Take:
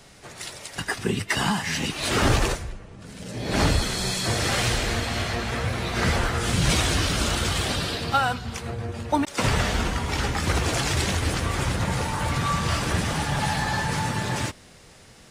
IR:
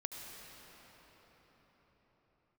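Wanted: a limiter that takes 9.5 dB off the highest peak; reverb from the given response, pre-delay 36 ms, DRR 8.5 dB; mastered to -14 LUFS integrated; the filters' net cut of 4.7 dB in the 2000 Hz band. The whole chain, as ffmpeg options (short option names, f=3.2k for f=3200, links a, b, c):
-filter_complex "[0:a]equalizer=f=2k:t=o:g=-6,alimiter=limit=-19dB:level=0:latency=1,asplit=2[a][b];[1:a]atrim=start_sample=2205,adelay=36[c];[b][c]afir=irnorm=-1:irlink=0,volume=-8dB[d];[a][d]amix=inputs=2:normalize=0,volume=14.5dB"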